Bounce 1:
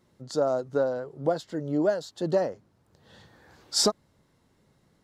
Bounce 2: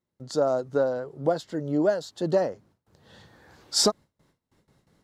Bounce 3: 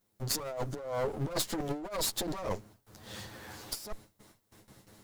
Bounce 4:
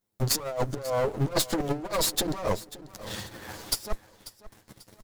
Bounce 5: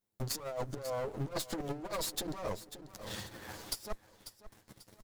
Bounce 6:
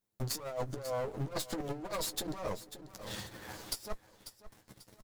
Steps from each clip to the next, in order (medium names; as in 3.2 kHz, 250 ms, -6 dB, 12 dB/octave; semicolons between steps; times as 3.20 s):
gate with hold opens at -55 dBFS; trim +1.5 dB
comb filter that takes the minimum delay 9.4 ms; treble shelf 7.4 kHz +12 dB; compressor with a negative ratio -36 dBFS, ratio -1
waveshaping leveller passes 2; transient shaper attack +7 dB, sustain -6 dB; feedback delay 541 ms, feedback 38%, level -17 dB; trim -2 dB
compression, threshold -28 dBFS, peak gain reduction 7.5 dB; trim -5.5 dB
doubling 16 ms -13 dB